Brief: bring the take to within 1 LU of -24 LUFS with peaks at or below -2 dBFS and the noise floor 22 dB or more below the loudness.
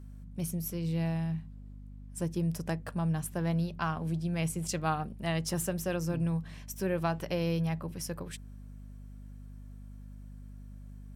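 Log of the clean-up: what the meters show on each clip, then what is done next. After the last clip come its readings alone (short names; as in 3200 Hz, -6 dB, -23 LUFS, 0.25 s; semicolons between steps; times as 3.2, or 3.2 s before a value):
hum 50 Hz; harmonics up to 250 Hz; hum level -44 dBFS; loudness -33.5 LUFS; peak -18.0 dBFS; loudness target -24.0 LUFS
-> de-hum 50 Hz, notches 5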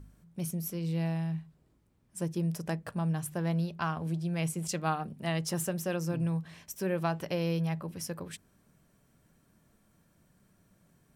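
hum none; loudness -33.5 LUFS; peak -18.0 dBFS; loudness target -24.0 LUFS
-> gain +9.5 dB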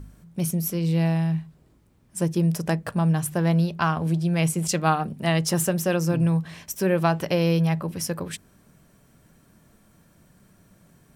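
loudness -24.0 LUFS; peak -8.5 dBFS; noise floor -59 dBFS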